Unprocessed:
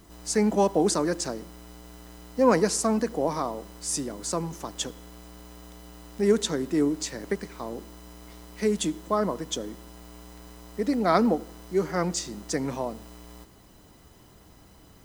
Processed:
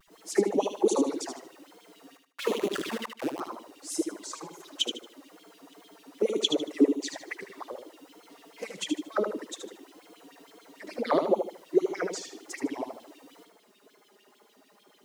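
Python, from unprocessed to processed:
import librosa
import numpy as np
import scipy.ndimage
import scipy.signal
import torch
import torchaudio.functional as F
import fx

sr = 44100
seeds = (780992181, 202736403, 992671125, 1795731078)

y = fx.schmitt(x, sr, flips_db=-21.0, at=(2.16, 3.4))
y = fx.filter_lfo_highpass(y, sr, shape='sine', hz=6.7, low_hz=280.0, high_hz=3400.0, q=5.3)
y = fx.wow_flutter(y, sr, seeds[0], rate_hz=2.1, depth_cents=130.0)
y = fx.env_flanger(y, sr, rest_ms=5.3, full_db=-18.0)
y = fx.echo_feedback(y, sr, ms=76, feedback_pct=31, wet_db=-7.0)
y = F.gain(torch.from_numpy(y), -5.5).numpy()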